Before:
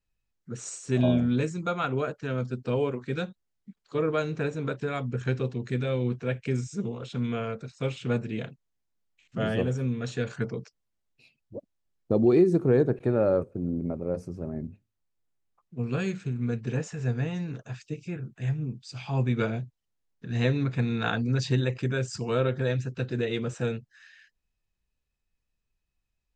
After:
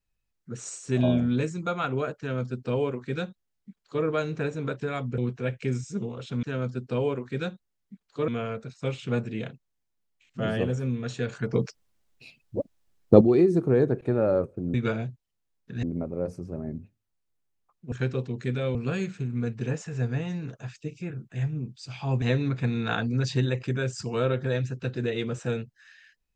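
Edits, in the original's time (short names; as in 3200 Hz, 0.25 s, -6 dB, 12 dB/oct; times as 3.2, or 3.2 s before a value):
2.19–4.04 copy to 7.26
5.18–6.01 move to 15.81
10.51–12.19 gain +10 dB
19.28–20.37 move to 13.72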